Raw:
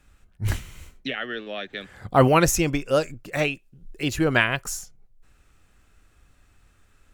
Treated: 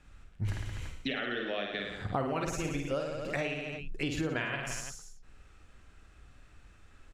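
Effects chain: on a send: reverse bouncing-ball echo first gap 50 ms, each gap 1.15×, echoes 5; on the sum: compressor 8:1, threshold -30 dBFS, peak gain reduction 19 dB; air absorption 56 m

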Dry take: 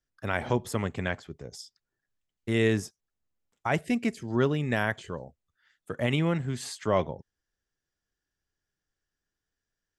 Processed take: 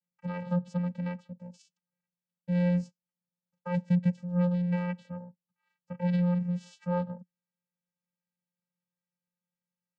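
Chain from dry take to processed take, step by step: vocoder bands 8, square 177 Hz

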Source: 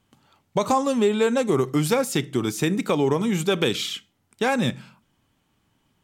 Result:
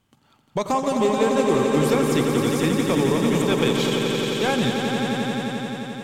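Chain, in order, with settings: transient shaper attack -1 dB, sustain -7 dB; soft clip -12.5 dBFS, distortion -21 dB; swelling echo 87 ms, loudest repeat 5, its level -7 dB

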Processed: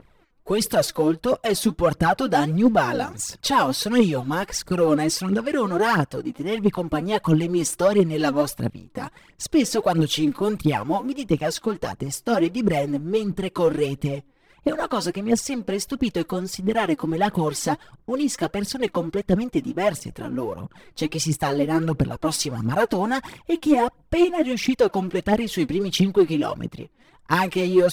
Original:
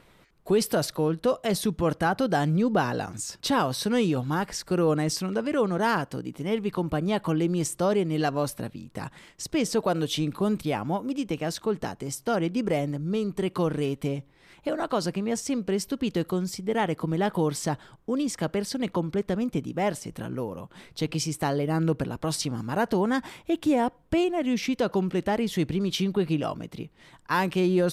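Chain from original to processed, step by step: phaser 1.5 Hz, delay 4.2 ms, feedback 67%; sample leveller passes 1; mismatched tape noise reduction decoder only; gain -1 dB

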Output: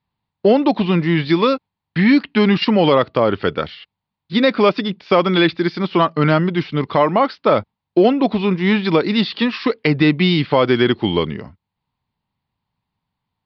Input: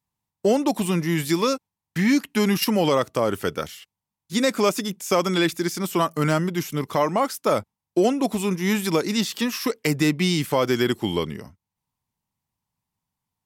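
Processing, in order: steep low-pass 4600 Hz 72 dB/oct; gain +6.5 dB

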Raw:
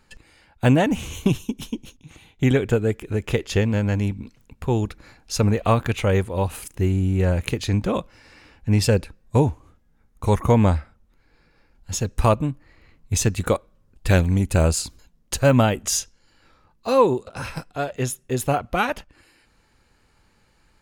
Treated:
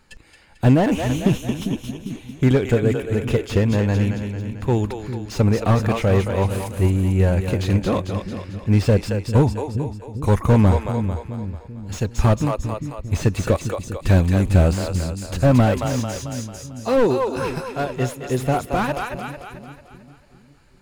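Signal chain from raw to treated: split-band echo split 330 Hz, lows 0.4 s, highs 0.222 s, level -8 dB; slew limiter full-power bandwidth 91 Hz; gain +2 dB

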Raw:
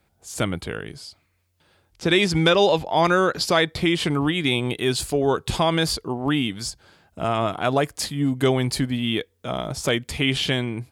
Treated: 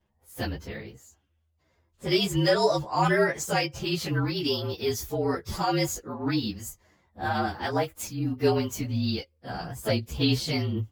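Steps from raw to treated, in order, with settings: inharmonic rescaling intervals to 113%; chorus voices 4, 1.1 Hz, delay 12 ms, depth 3 ms; mismatched tape noise reduction decoder only

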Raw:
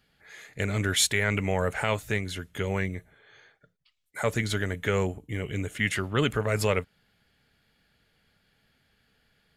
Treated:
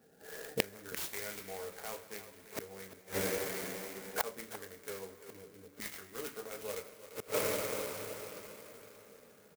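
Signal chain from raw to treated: Wiener smoothing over 41 samples; dynamic EQ 2500 Hz, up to +4 dB, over -40 dBFS, Q 2.4; two-slope reverb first 0.23 s, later 3.8 s, from -20 dB, DRR -0.5 dB; flipped gate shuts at -28 dBFS, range -31 dB; Bessel high-pass 380 Hz, order 2; high shelf 9400 Hz -6 dB; on a send: echo 0.344 s -14 dB; on the sum: clock jitter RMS 0.088 ms; gain +13.5 dB

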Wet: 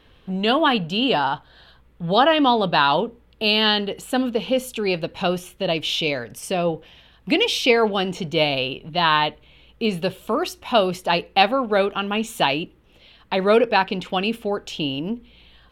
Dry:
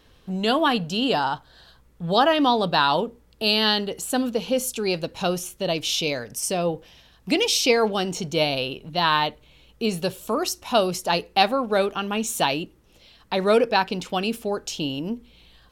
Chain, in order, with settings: resonant high shelf 4200 Hz -8.5 dB, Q 1.5; gain +2 dB

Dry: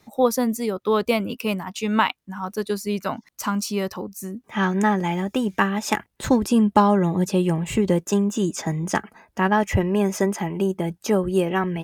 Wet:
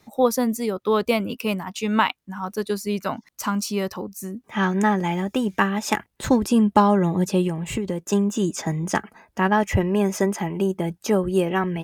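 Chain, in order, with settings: 7.47–8.1 compressor 5:1, threshold -23 dBFS, peak gain reduction 8 dB

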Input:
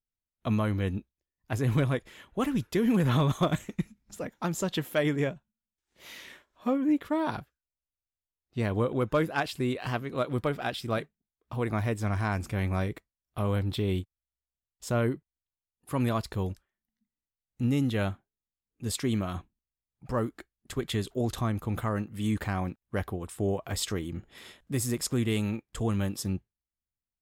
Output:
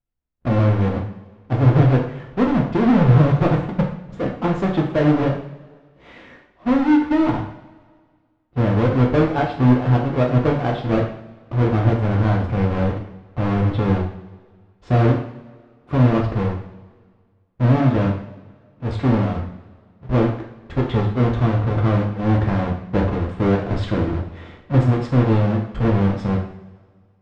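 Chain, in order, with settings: half-waves squared off; in parallel at -0.5 dB: vocal rider within 5 dB 0.5 s; on the sum: tape spacing loss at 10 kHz 43 dB; two-slope reverb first 0.56 s, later 1.8 s, from -17 dB, DRR -0.5 dB

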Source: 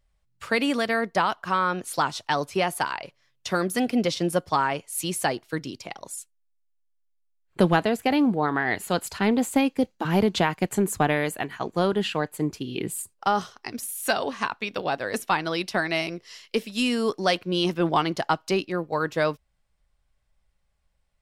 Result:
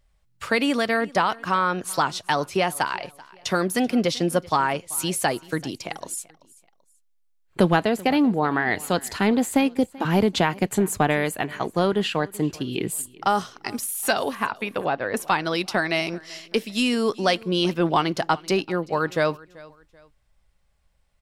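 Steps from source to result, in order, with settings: 14.35–15.17 LPF 2500 Hz 12 dB/oct; in parallel at -2 dB: compressor, threshold -31 dBFS, peak gain reduction 16 dB; on the sum: feedback echo 0.385 s, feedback 33%, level -22 dB

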